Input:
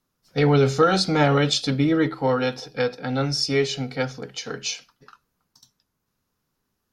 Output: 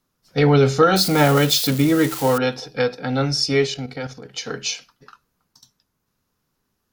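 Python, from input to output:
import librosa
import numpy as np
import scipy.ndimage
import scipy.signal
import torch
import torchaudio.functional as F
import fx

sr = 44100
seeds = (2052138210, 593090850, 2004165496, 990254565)

y = fx.crossing_spikes(x, sr, level_db=-20.5, at=(0.96, 2.38))
y = fx.level_steps(y, sr, step_db=10, at=(3.66, 4.34), fade=0.02)
y = y * librosa.db_to_amplitude(3.0)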